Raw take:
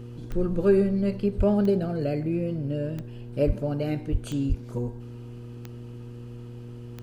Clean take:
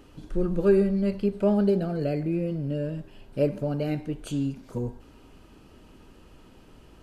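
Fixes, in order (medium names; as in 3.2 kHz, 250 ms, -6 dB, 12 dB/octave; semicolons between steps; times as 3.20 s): de-click; de-hum 119.6 Hz, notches 4; de-plosive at 1.37/3.46/4.11/4.48 s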